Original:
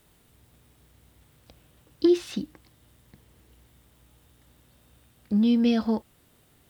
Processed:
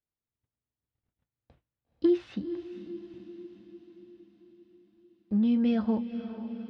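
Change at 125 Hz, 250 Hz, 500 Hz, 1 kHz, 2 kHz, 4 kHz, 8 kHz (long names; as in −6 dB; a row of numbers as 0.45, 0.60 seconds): −3.0 dB, −3.0 dB, −3.5 dB, can't be measured, −6.0 dB, −11.0 dB, below −20 dB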